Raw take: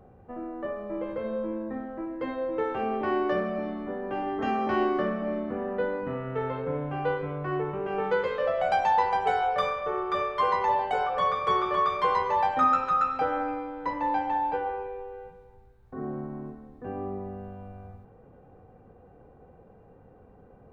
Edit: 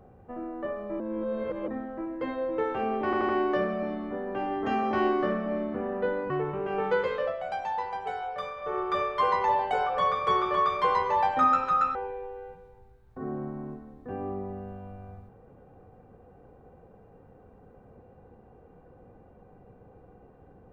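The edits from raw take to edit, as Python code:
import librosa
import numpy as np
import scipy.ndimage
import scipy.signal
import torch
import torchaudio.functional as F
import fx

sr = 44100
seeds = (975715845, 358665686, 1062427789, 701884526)

y = fx.edit(x, sr, fx.reverse_span(start_s=1.0, length_s=0.68),
    fx.stutter(start_s=3.05, slice_s=0.08, count=4),
    fx.cut(start_s=6.06, length_s=1.44),
    fx.fade_down_up(start_s=8.35, length_s=1.64, db=-8.5, fade_s=0.24),
    fx.cut(start_s=13.15, length_s=1.56), tone=tone)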